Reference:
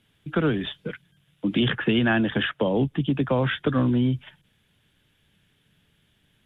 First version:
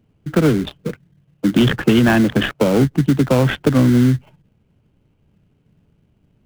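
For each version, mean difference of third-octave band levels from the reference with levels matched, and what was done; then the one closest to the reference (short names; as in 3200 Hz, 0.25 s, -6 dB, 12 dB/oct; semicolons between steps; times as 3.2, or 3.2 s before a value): 7.0 dB: Wiener smoothing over 25 samples; in parallel at -5.5 dB: sample-rate reducer 1800 Hz, jitter 20%; on the sum: gain +5.5 dB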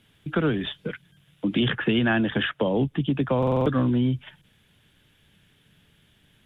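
1.5 dB: in parallel at +1 dB: compressor, threshold -37 dBFS, peak gain reduction 18 dB; on the sum: stuck buffer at 3.38, samples 2048, times 5; gain -2 dB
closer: second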